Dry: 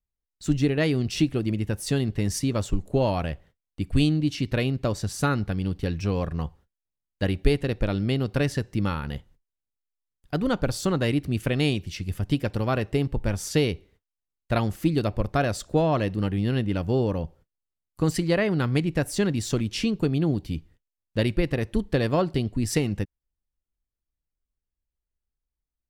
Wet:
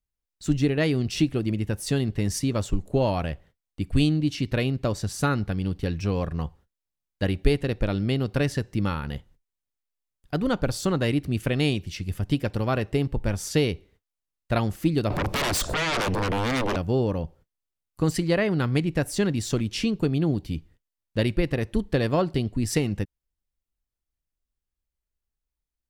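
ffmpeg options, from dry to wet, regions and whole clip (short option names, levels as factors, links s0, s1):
-filter_complex "[0:a]asettb=1/sr,asplit=3[s0][s1][s2];[s0]atrim=end=15.104[s3];[s1]atrim=start=15.1:end=16.76,asetpts=PTS-STARTPTS,afade=t=in:d=0.004:c=qsin,afade=t=out:st=1.656:d=0.004:c=qsin,acompressor=threshold=0.0112:ratio=2:attack=3.2:release=140:knee=1:detection=peak,aeval=exprs='0.0794*sin(PI/2*7.94*val(0)/0.0794)':c=same[s4];[s2]atrim=start=16.756[s5];[s3][s4]acrossfade=d=0.004:c1=hsin:c2=qsin[s6];[s6][s5]acrossfade=d=0.004:c1=qsin:c2=hsin"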